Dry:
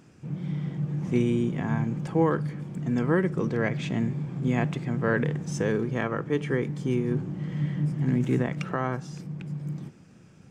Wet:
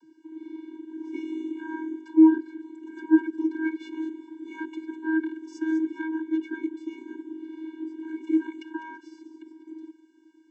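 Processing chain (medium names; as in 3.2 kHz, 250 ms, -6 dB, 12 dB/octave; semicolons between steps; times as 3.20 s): vocoder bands 32, square 318 Hz; feedback echo behind a high-pass 201 ms, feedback 30%, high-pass 3.8 kHz, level -9.5 dB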